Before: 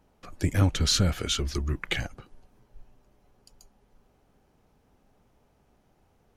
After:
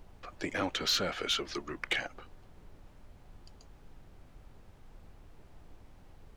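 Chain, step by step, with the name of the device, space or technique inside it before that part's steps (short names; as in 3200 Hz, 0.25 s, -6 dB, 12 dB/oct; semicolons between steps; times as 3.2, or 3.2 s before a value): aircraft cabin announcement (BPF 430–4200 Hz; soft clip -22.5 dBFS, distortion -16 dB; brown noise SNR 12 dB); gain +1.5 dB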